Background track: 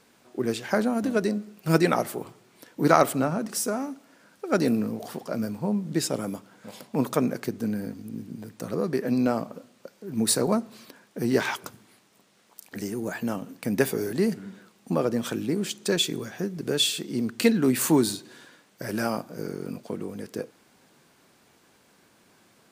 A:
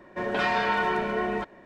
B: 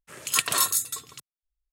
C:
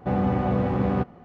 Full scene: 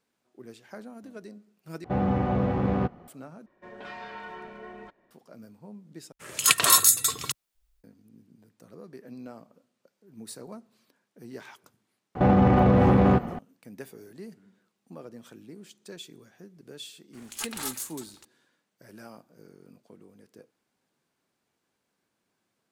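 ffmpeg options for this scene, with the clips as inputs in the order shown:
ffmpeg -i bed.wav -i cue0.wav -i cue1.wav -i cue2.wav -filter_complex "[3:a]asplit=2[link_01][link_02];[2:a]asplit=2[link_03][link_04];[0:a]volume=-19dB[link_05];[link_03]dynaudnorm=framelen=140:gausssize=3:maxgain=14dB[link_06];[link_02]alimiter=level_in=23dB:limit=-1dB:release=50:level=0:latency=1[link_07];[link_04]aeval=exprs='val(0)*sgn(sin(2*PI*220*n/s))':channel_layout=same[link_08];[link_05]asplit=4[link_09][link_10][link_11][link_12];[link_09]atrim=end=1.844[link_13];[link_01]atrim=end=1.24,asetpts=PTS-STARTPTS,volume=-2dB[link_14];[link_10]atrim=start=3.076:end=3.464[link_15];[1:a]atrim=end=1.65,asetpts=PTS-STARTPTS,volume=-16dB[link_16];[link_11]atrim=start=5.106:end=6.124[link_17];[link_06]atrim=end=1.72,asetpts=PTS-STARTPTS,volume=-0.5dB[link_18];[link_12]atrim=start=7.836[link_19];[link_07]atrim=end=1.24,asetpts=PTS-STARTPTS,volume=-10dB,afade=type=in:duration=0.004:curve=hsin,afade=type=out:start_time=1.236:duration=0.004:curve=hsin,adelay=12150[link_20];[link_08]atrim=end=1.72,asetpts=PTS-STARTPTS,volume=-11.5dB,afade=type=in:duration=0.004:curve=hsin,afade=type=out:start_time=1.716:duration=0.004:curve=hsin,adelay=17050[link_21];[link_13][link_14]acrossfade=duration=0.004:curve1=hsin:curve2=hsin[link_22];[link_22][link_15]acrossfade=duration=0.004:curve1=hsin:curve2=hsin[link_23];[link_23][link_16]acrossfade=duration=0.004:curve1=hsin:curve2=hsin[link_24];[link_24][link_17]acrossfade=duration=0.004:curve1=hsin:curve2=hsin[link_25];[link_25][link_18]acrossfade=duration=0.004:curve1=hsin:curve2=hsin[link_26];[link_26][link_19]acrossfade=duration=0.004:curve1=hsin:curve2=hsin[link_27];[link_27][link_20][link_21]amix=inputs=3:normalize=0" out.wav

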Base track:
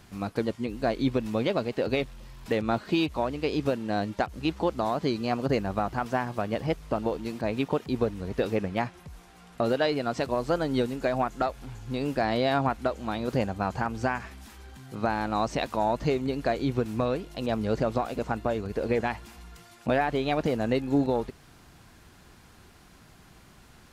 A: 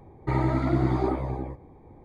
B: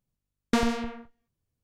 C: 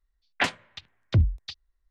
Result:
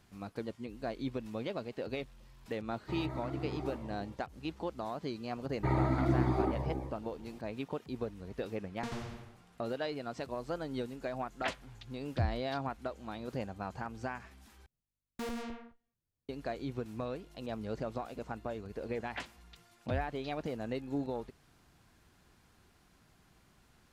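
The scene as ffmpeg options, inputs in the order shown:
ffmpeg -i bed.wav -i cue0.wav -i cue1.wav -i cue2.wav -filter_complex "[1:a]asplit=2[link_01][link_02];[2:a]asplit=2[link_03][link_04];[3:a]asplit=2[link_05][link_06];[0:a]volume=-11.5dB[link_07];[link_03]asplit=5[link_08][link_09][link_10][link_11][link_12];[link_09]adelay=85,afreqshift=-110,volume=-3dB[link_13];[link_10]adelay=170,afreqshift=-220,volume=-12.9dB[link_14];[link_11]adelay=255,afreqshift=-330,volume=-22.8dB[link_15];[link_12]adelay=340,afreqshift=-440,volume=-32.7dB[link_16];[link_08][link_13][link_14][link_15][link_16]amix=inputs=5:normalize=0[link_17];[link_04]asoftclip=type=hard:threshold=-27.5dB[link_18];[link_07]asplit=2[link_19][link_20];[link_19]atrim=end=14.664[link_21];[link_18]atrim=end=1.63,asetpts=PTS-STARTPTS,volume=-8.5dB[link_22];[link_20]atrim=start=16.286[link_23];[link_01]atrim=end=2.04,asetpts=PTS-STARTPTS,volume=-15.5dB,afade=type=in:duration=0.004:curve=hsin,afade=type=out:start_time=2.036:duration=0.004:curve=hsin,adelay=2610[link_24];[link_02]atrim=end=2.04,asetpts=PTS-STARTPTS,volume=-5.5dB,afade=type=in:duration=0.004:curve=hsin,afade=type=out:start_time=2.036:duration=0.004:curve=hsin,adelay=5360[link_25];[link_17]atrim=end=1.63,asetpts=PTS-STARTPTS,volume=-17dB,afade=type=in:duration=0.004:curve=hsin,afade=type=out:start_time=1.626:duration=0.004:curve=hsin,adelay=8300[link_26];[link_05]atrim=end=1.9,asetpts=PTS-STARTPTS,volume=-12.5dB,afade=type=in:duration=0.004:curve=hsin,afade=type=out:start_time=1.896:duration=0.004:curve=hsin,adelay=11040[link_27];[link_06]atrim=end=1.9,asetpts=PTS-STARTPTS,volume=-17dB,afade=type=in:duration=0.004:curve=hsin,afade=type=out:start_time=1.896:duration=0.004:curve=hsin,adelay=827316S[link_28];[link_21][link_22]acrossfade=duration=0.004:curve1=hsin:curve2=hsin[link_29];[link_29][link_23]acrossfade=duration=0.004:curve1=hsin:curve2=hsin[link_30];[link_30][link_24][link_25][link_26][link_27][link_28]amix=inputs=6:normalize=0" out.wav

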